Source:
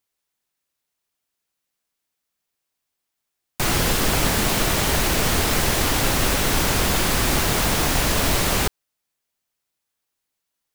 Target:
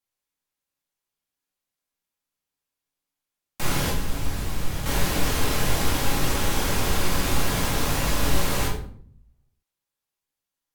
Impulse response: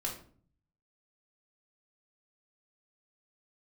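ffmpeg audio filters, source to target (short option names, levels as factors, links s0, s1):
-filter_complex "[0:a]asettb=1/sr,asplit=3[s0][s1][s2];[s0]atrim=end=3.904[s3];[s1]atrim=start=3.9:end=4.86,asetpts=PTS-STARTPTS,afade=t=in:d=0.004:c=qsin,afade=t=out:st=0.956:d=0.004:c=qsin,acrossover=split=130[s4][s5];[s5]acompressor=threshold=0.0178:ratio=2[s6];[s4][s6]amix=inputs=2:normalize=0[s7];[s2]atrim=start=4.856[s8];[s3][s7]acrossfade=d=0.004:c1=hsin:c2=qsin[s9];[s9][s8]acrossfade=d=0.004:c1=qsin:c2=hsin[s10];[1:a]atrim=start_sample=2205,asetrate=35721,aresample=44100[s11];[s10][s11]afir=irnorm=-1:irlink=0,volume=0.376"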